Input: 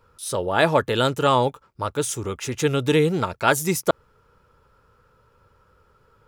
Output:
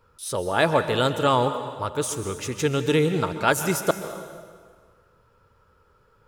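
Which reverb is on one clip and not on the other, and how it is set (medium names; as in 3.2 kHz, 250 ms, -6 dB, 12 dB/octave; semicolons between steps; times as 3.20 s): plate-style reverb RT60 1.7 s, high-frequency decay 0.85×, pre-delay 115 ms, DRR 9 dB; trim -2 dB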